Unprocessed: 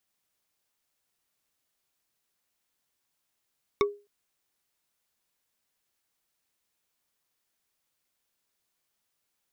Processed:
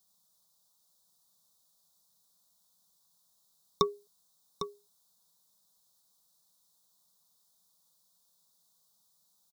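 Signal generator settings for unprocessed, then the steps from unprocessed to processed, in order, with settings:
struck wood bar, length 0.26 s, lowest mode 409 Hz, decay 0.30 s, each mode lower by 3 dB, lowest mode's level −17.5 dB
drawn EQ curve 120 Hz 0 dB, 180 Hz +12 dB, 320 Hz −10 dB, 480 Hz +2 dB, 1,100 Hz +5 dB, 2,500 Hz −23 dB, 3,700 Hz +9 dB
on a send: single-tap delay 803 ms −10 dB

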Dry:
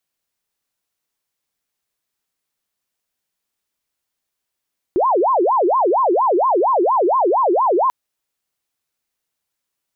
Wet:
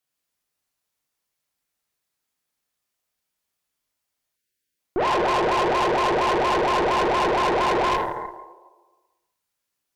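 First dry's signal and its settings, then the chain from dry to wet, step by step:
siren wail 340–1,070 Hz 4.3 per second sine −12.5 dBFS 2.94 s
dense smooth reverb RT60 1.3 s, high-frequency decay 0.85×, DRR −2 dB
time-frequency box erased 0:04.36–0:04.79, 560–1,400 Hz
tube saturation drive 19 dB, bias 0.75

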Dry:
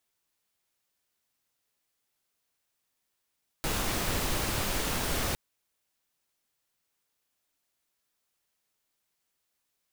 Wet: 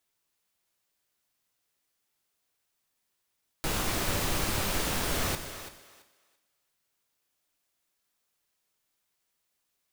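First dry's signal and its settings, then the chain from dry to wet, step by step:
noise pink, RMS −30 dBFS 1.71 s
on a send: feedback echo with a high-pass in the loop 335 ms, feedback 20%, high-pass 320 Hz, level −11.5 dB
on the sum: reverb whose tail is shaped and stops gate 460 ms falling, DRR 8.5 dB

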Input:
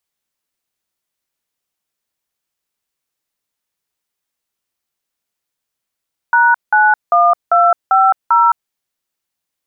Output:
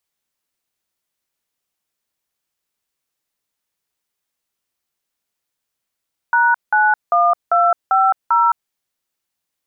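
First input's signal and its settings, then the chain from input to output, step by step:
touch tones "#91250", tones 214 ms, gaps 181 ms, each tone −10 dBFS
brickwall limiter −7.5 dBFS

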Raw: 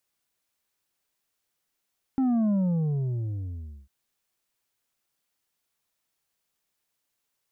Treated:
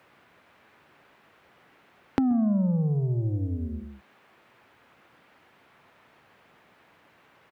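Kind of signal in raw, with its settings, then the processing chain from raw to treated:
bass drop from 270 Hz, over 1.70 s, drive 5.5 dB, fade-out 1.37 s, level −21.5 dB
high-pass filter 93 Hz 12 dB per octave
on a send: single-tap delay 130 ms −10 dB
on the sum: multiband upward and downward compressor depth 100%

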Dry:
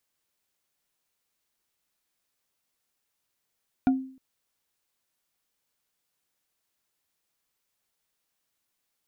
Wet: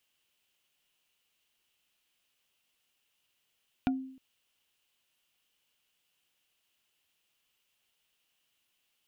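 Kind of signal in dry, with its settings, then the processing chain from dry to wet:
struck wood bar, length 0.31 s, lowest mode 263 Hz, decay 0.49 s, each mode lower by 8 dB, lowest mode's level −15.5 dB
parametric band 2,900 Hz +13.5 dB 0.51 octaves
downward compressor 2 to 1, threshold −33 dBFS

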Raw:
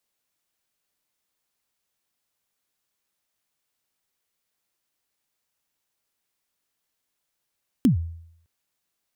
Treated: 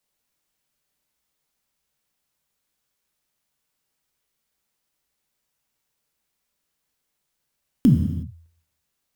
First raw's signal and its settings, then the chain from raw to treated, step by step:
synth kick length 0.61 s, from 290 Hz, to 83 Hz, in 117 ms, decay 0.70 s, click on, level −11.5 dB
low-shelf EQ 250 Hz +5 dB
reverb whose tail is shaped and stops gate 390 ms falling, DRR 3 dB

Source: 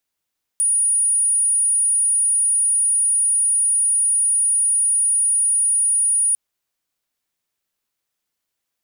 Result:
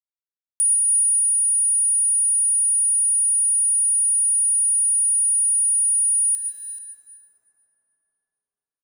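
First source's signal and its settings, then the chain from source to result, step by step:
tone sine 9,610 Hz −14.5 dBFS 5.75 s
single-tap delay 434 ms −15.5 dB
centre clipping without the shift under −44.5 dBFS
dense smooth reverb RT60 4.5 s, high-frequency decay 0.4×, pre-delay 75 ms, DRR 5 dB

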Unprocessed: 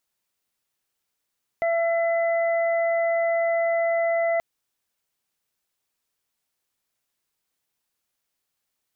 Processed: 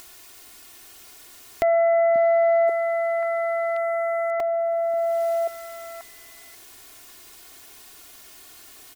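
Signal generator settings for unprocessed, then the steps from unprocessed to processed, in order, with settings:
steady harmonic partials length 2.78 s, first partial 671 Hz, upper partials −19/−9.5 dB, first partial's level −20 dB
comb filter 2.8 ms, depth 86%
upward compression, threshold −22 dBFS
echo through a band-pass that steps 536 ms, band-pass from 190 Hz, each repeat 1.4 octaves, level −1 dB

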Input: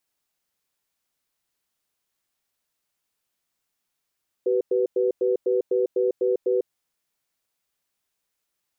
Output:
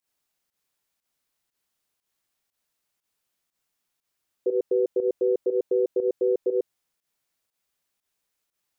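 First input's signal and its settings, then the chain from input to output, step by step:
tone pair in a cadence 381 Hz, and 494 Hz, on 0.15 s, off 0.10 s, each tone −21.5 dBFS 2.21 s
fake sidechain pumping 120 BPM, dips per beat 1, −13 dB, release 108 ms

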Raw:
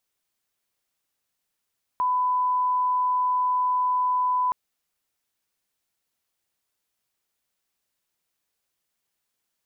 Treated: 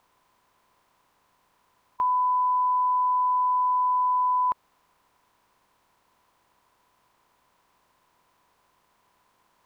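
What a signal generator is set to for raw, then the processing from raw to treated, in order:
line-up tone −20 dBFS 2.52 s
compressor on every frequency bin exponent 0.6

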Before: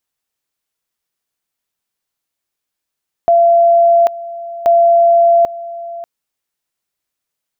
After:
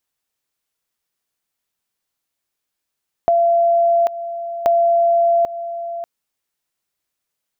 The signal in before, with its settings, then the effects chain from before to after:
tone at two levels in turn 682 Hz −6 dBFS, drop 17.5 dB, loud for 0.79 s, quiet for 0.59 s, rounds 2
downward compressor 4 to 1, threshold −14 dBFS

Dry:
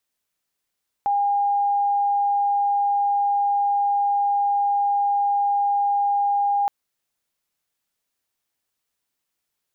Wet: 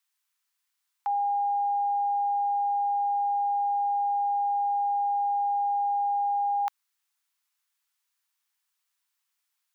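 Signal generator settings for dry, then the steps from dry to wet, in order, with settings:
tone sine 810 Hz −17.5 dBFS 5.62 s
Butterworth high-pass 880 Hz 36 dB per octave

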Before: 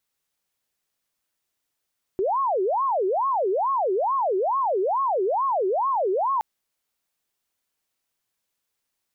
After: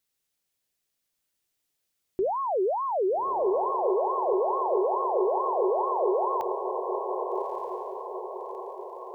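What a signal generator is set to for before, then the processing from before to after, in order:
siren wail 368–1,100 Hz 2.3 per second sine −20 dBFS 4.22 s
parametric band 1,100 Hz −6 dB 1.7 octaves
mains-hum notches 50/100/150/200/250 Hz
feedback delay with all-pass diffusion 1,231 ms, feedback 50%, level −4.5 dB

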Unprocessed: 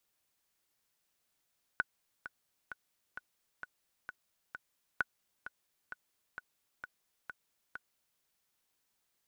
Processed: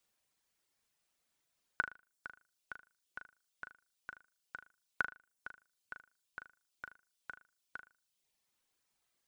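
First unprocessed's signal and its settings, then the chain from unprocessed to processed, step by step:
click track 131 BPM, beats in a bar 7, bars 2, 1,480 Hz, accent 13 dB −16.5 dBFS
reverb reduction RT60 0.83 s
parametric band 14,000 Hz −11.5 dB 0.24 octaves
flutter between parallel walls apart 6.6 metres, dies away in 0.31 s

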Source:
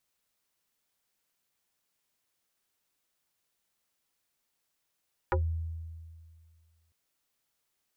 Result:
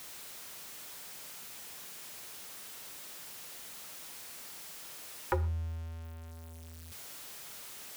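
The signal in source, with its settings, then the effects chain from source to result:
two-operator FM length 1.60 s, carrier 81.7 Hz, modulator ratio 5.48, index 4, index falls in 0.13 s exponential, decay 2.03 s, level −23 dB
converter with a step at zero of −41 dBFS
low-shelf EQ 77 Hz −9.5 dB
reverb whose tail is shaped and stops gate 160 ms falling, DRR 12 dB

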